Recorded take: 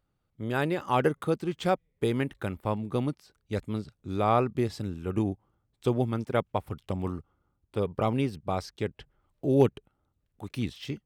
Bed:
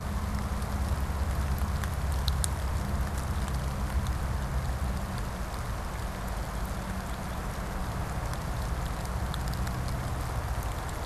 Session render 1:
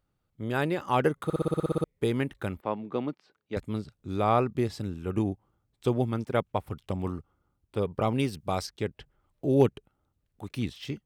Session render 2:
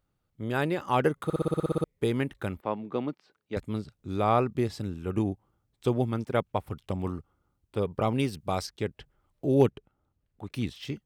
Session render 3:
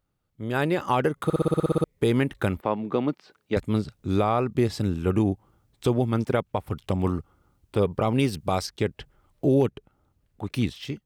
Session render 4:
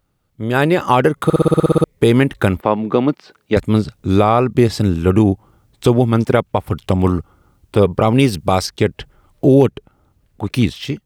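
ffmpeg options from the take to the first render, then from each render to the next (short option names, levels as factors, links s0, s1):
-filter_complex "[0:a]asettb=1/sr,asplit=3[s0][s1][s2];[s0]atrim=end=2.614[s3];[s1]atrim=start=2.61:end=3.57,asetpts=PTS-STARTPTS,afade=t=in:d=0.004:c=qsin,afade=t=out:st=0.956:d=0.004:c=qsin,highpass=230,lowpass=3200[s4];[s2]atrim=start=3.566[s5];[s3][s4]acrossfade=d=0.004:c1=hsin:c2=qsin[s6];[s6][s5]acrossfade=d=0.004:c1=qsin:c2=hsin,asettb=1/sr,asplit=3[s7][s8][s9];[s7]atrim=end=8.194[s10];[s8]atrim=start=8.19:end=8.67,asetpts=PTS-STARTPTS,afade=t=in:d=0.004:c=qsin,afade=t=out:st=0.476:d=0.004:c=qsin,highshelf=f=3100:g=9[s11];[s9]atrim=start=8.666[s12];[s10][s11]acrossfade=d=0.004:c1=hsin:c2=qsin[s13];[s13][s12]acrossfade=d=0.004:c1=qsin:c2=hsin,asplit=11[s14][s15][s16][s17][s18][s19][s20][s21][s22][s23][s24];[s14]atrim=end=1.302[s25];[s15]atrim=start=1.238:end=1.302[s26];[s16]atrim=start=1.238:end=1.302[s27];[s17]atrim=start=1.238:end=1.302[s28];[s18]atrim=start=1.238:end=1.302[s29];[s19]atrim=start=1.238:end=1.302[s30];[s20]atrim=start=1.238:end=1.302[s31];[s21]atrim=start=1.238:end=1.302[s32];[s22]atrim=start=1.238:end=1.302[s33];[s23]atrim=start=1.238:end=1.302[s34];[s24]atrim=start=1.838[s35];[s25][s26]acrossfade=d=0.004:c1=hsin:c2=hsin[s36];[s36][s27]acrossfade=d=0.004:c1=hsin:c2=hsin[s37];[s37][s28]acrossfade=d=0.004:c1=hsin:c2=hsin[s38];[s38][s29]acrossfade=d=0.004:c1=hsin:c2=hsin[s39];[s39][s30]acrossfade=d=0.004:c1=hsin:c2=hsin[s40];[s40][s31]acrossfade=d=0.004:c1=hsin:c2=hsin[s41];[s41][s32]acrossfade=d=0.004:c1=hsin:c2=hsin[s42];[s42][s33]acrossfade=d=0.004:c1=hsin:c2=hsin[s43];[s43][s34]acrossfade=d=0.004:c1=hsin:c2=hsin[s44];[s44][s35]acrossfade=d=0.004:c1=hsin:c2=hsin"
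-filter_complex "[0:a]asettb=1/sr,asplit=3[s0][s1][s2];[s0]atrim=end=9.704[s3];[s1]atrim=start=9.7:end=10.52,asetpts=PTS-STARTPTS,afade=t=in:d=0.004:c=qsin,afade=t=out:st=0.816:d=0.004:c=qsin,lowpass=f=2800:p=1[s4];[s2]atrim=start=10.516[s5];[s3][s4]acrossfade=d=0.004:c1=hsin:c2=qsin[s6];[s6][s5]acrossfade=d=0.004:c1=qsin:c2=hsin"
-af "dynaudnorm=f=170:g=9:m=3.55,alimiter=limit=0.251:level=0:latency=1:release=318"
-af "volume=3.16"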